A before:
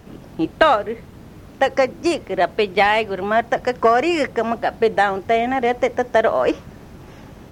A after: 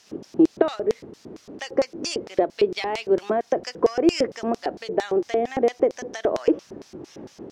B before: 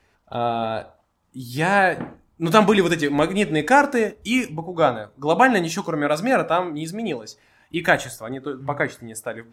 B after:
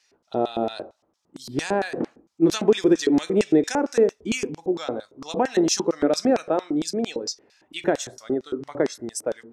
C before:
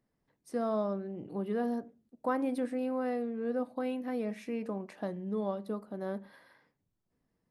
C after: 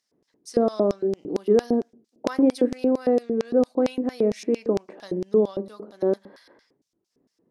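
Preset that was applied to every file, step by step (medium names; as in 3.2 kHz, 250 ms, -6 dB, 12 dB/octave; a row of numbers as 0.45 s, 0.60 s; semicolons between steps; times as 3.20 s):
compression 4:1, threshold -19 dBFS; LFO band-pass square 4.4 Hz 370–5500 Hz; normalise loudness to -24 LUFS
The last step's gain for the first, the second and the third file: +9.5 dB, +11.0 dB, +20.0 dB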